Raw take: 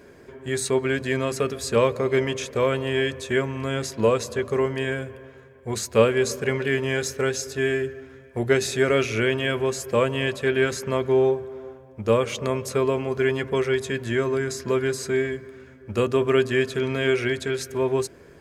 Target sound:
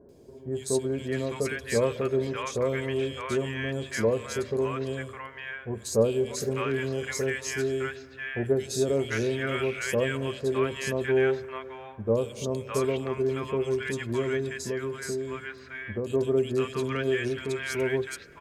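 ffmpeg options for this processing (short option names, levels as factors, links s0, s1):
-filter_complex "[0:a]acrossover=split=880|3200[s0][s1][s2];[s2]adelay=90[s3];[s1]adelay=610[s4];[s0][s4][s3]amix=inputs=3:normalize=0,asettb=1/sr,asplit=3[s5][s6][s7];[s5]atrim=end=14.604[s8];[s6]atrim=start=14.6:end=16.1,asetpts=PTS-STARTPTS,afade=t=in:d=0.004:c=qsin,afade=t=out:st=1.496:d=0.004:c=qsin,acompressor=threshold=0.0562:ratio=3[s9];[s7]atrim=start=16.096[s10];[s8][s9]acrossfade=d=0.004:c1=hsin:c2=qsin[s11];[s11][s10]acrossfade=d=0.004:c1=qsin:c2=hsin,volume=0.631"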